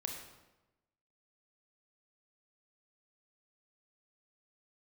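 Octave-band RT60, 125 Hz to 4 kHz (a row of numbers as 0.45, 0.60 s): 1.2, 1.1, 1.1, 1.0, 0.85, 0.75 s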